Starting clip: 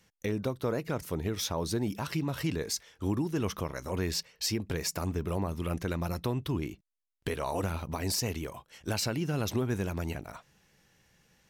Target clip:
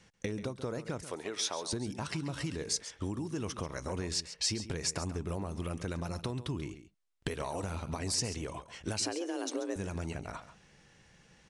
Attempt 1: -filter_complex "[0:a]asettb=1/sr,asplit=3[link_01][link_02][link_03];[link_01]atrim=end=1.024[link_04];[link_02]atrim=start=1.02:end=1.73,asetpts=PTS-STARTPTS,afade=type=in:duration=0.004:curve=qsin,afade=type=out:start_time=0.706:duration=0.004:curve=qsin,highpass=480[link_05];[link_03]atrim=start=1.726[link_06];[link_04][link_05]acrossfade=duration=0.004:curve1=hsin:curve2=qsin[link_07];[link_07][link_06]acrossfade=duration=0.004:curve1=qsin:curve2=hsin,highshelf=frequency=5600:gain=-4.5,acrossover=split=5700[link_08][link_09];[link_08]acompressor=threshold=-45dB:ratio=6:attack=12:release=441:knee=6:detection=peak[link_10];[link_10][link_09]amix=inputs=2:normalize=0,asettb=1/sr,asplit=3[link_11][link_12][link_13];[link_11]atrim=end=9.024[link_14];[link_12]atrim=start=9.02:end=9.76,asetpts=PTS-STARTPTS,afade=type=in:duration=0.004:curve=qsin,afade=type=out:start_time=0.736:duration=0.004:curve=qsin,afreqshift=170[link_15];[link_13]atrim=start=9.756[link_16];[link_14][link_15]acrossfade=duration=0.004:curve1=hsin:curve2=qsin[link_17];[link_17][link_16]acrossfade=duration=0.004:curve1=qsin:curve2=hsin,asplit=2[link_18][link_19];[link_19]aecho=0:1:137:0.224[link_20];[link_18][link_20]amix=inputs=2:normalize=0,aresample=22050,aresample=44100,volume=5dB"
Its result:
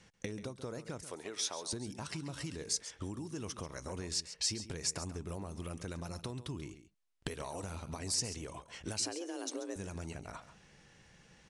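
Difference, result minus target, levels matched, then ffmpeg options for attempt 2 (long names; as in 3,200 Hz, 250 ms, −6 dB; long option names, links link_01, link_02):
downward compressor: peak gain reduction +5.5 dB
-filter_complex "[0:a]asettb=1/sr,asplit=3[link_01][link_02][link_03];[link_01]atrim=end=1.024[link_04];[link_02]atrim=start=1.02:end=1.73,asetpts=PTS-STARTPTS,afade=type=in:duration=0.004:curve=qsin,afade=type=out:start_time=0.706:duration=0.004:curve=qsin,highpass=480[link_05];[link_03]atrim=start=1.726[link_06];[link_04][link_05]acrossfade=duration=0.004:curve1=hsin:curve2=qsin[link_07];[link_07][link_06]acrossfade=duration=0.004:curve1=qsin:curve2=hsin,highshelf=frequency=5600:gain=-4.5,acrossover=split=5700[link_08][link_09];[link_08]acompressor=threshold=-38.5dB:ratio=6:attack=12:release=441:knee=6:detection=peak[link_10];[link_10][link_09]amix=inputs=2:normalize=0,asettb=1/sr,asplit=3[link_11][link_12][link_13];[link_11]atrim=end=9.024[link_14];[link_12]atrim=start=9.02:end=9.76,asetpts=PTS-STARTPTS,afade=type=in:duration=0.004:curve=qsin,afade=type=out:start_time=0.736:duration=0.004:curve=qsin,afreqshift=170[link_15];[link_13]atrim=start=9.756[link_16];[link_14][link_15]acrossfade=duration=0.004:curve1=hsin:curve2=qsin[link_17];[link_17][link_16]acrossfade=duration=0.004:curve1=qsin:curve2=hsin,asplit=2[link_18][link_19];[link_19]aecho=0:1:137:0.224[link_20];[link_18][link_20]amix=inputs=2:normalize=0,aresample=22050,aresample=44100,volume=5dB"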